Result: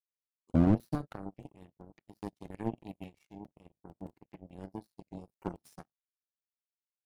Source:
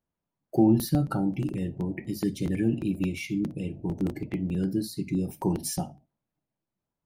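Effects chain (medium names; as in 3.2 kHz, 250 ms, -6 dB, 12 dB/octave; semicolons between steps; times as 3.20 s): tape start-up on the opening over 0.78 s; power-law waveshaper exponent 3; slew-rate limiter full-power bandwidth 18 Hz; trim +4.5 dB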